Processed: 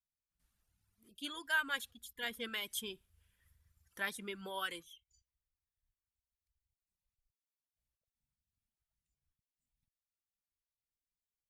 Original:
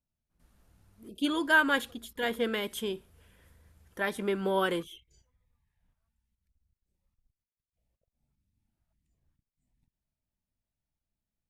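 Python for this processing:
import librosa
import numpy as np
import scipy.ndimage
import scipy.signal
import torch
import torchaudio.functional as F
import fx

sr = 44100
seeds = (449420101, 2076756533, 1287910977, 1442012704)

y = fx.rider(x, sr, range_db=4, speed_s=2.0)
y = fx.tone_stack(y, sr, knobs='5-5-5')
y = fx.dereverb_blind(y, sr, rt60_s=1.9)
y = F.gain(torch.from_numpy(y), 3.5).numpy()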